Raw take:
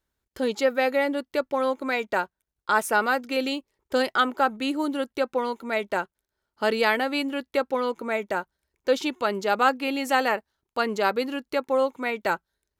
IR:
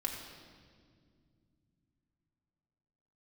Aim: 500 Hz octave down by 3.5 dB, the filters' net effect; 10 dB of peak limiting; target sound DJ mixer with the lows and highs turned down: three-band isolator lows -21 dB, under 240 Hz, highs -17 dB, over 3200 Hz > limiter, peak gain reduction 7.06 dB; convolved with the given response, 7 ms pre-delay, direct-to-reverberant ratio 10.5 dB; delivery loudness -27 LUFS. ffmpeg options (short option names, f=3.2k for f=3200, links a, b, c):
-filter_complex "[0:a]equalizer=f=500:t=o:g=-3.5,alimiter=limit=-18dB:level=0:latency=1,asplit=2[a][b];[1:a]atrim=start_sample=2205,adelay=7[c];[b][c]afir=irnorm=-1:irlink=0,volume=-13dB[d];[a][d]amix=inputs=2:normalize=0,acrossover=split=240 3200:gain=0.0891 1 0.141[e][f][g];[e][f][g]amix=inputs=3:normalize=0,volume=6.5dB,alimiter=limit=-16dB:level=0:latency=1"